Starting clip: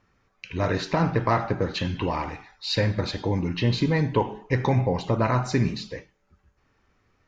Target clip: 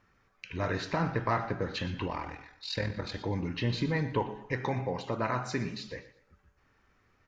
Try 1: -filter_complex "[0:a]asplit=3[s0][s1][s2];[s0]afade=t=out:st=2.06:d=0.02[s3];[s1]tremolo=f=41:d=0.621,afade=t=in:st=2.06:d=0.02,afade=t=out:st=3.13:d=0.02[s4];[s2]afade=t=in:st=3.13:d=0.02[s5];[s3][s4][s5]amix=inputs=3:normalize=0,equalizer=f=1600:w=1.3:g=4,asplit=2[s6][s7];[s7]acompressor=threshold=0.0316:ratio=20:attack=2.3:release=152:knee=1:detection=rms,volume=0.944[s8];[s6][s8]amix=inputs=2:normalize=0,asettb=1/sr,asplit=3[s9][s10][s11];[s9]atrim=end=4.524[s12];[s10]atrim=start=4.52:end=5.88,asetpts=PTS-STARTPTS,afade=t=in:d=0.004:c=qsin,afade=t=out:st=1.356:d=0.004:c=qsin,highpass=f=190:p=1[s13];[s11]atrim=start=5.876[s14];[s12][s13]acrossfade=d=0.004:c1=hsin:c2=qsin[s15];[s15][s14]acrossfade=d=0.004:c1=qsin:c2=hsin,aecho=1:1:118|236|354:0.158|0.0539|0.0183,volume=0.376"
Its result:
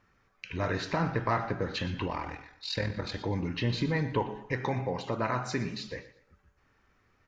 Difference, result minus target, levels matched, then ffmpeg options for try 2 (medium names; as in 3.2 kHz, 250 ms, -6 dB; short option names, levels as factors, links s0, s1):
compression: peak gain reduction -7 dB
-filter_complex "[0:a]asplit=3[s0][s1][s2];[s0]afade=t=out:st=2.06:d=0.02[s3];[s1]tremolo=f=41:d=0.621,afade=t=in:st=2.06:d=0.02,afade=t=out:st=3.13:d=0.02[s4];[s2]afade=t=in:st=3.13:d=0.02[s5];[s3][s4][s5]amix=inputs=3:normalize=0,equalizer=f=1600:w=1.3:g=4,asplit=2[s6][s7];[s7]acompressor=threshold=0.0133:ratio=20:attack=2.3:release=152:knee=1:detection=rms,volume=0.944[s8];[s6][s8]amix=inputs=2:normalize=0,asettb=1/sr,asplit=3[s9][s10][s11];[s9]atrim=end=4.524[s12];[s10]atrim=start=4.52:end=5.88,asetpts=PTS-STARTPTS,afade=t=in:d=0.004:c=qsin,afade=t=out:st=1.356:d=0.004:c=qsin,highpass=f=190:p=1[s13];[s11]atrim=start=5.876[s14];[s12][s13]acrossfade=d=0.004:c1=hsin:c2=qsin[s15];[s15][s14]acrossfade=d=0.004:c1=qsin:c2=hsin,aecho=1:1:118|236|354:0.158|0.0539|0.0183,volume=0.376"